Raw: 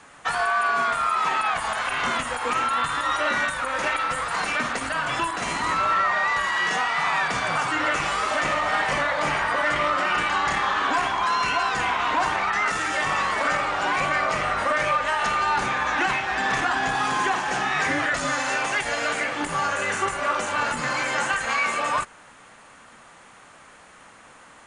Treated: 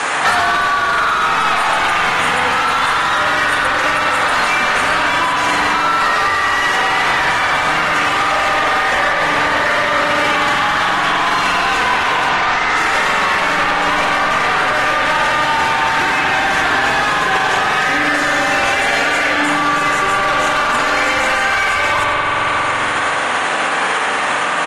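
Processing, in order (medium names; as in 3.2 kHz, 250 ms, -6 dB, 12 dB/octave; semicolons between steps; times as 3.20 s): overdrive pedal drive 25 dB, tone 5.6 kHz, clips at -11 dBFS; 12.29–12.77 s: low-pass 7.5 kHz 24 dB/octave; delay 95 ms -11 dB; spring tank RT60 3 s, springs 44 ms, chirp 35 ms, DRR -2 dB; loudness maximiser +20 dB; trim -7.5 dB; AAC 32 kbps 44.1 kHz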